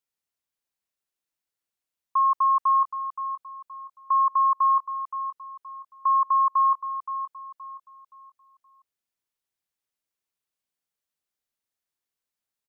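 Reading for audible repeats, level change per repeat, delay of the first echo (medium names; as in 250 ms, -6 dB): 3, -9.5 dB, 522 ms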